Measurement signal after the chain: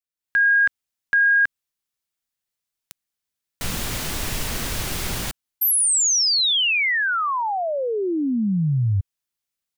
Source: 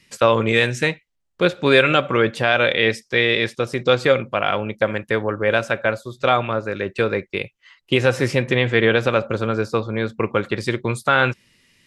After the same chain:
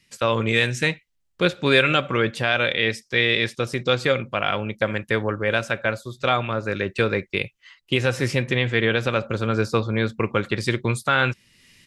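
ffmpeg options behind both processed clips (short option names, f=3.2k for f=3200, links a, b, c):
-af "equalizer=f=620:w=0.44:g=-5.5,dynaudnorm=f=160:g=3:m=11dB,volume=-4.5dB"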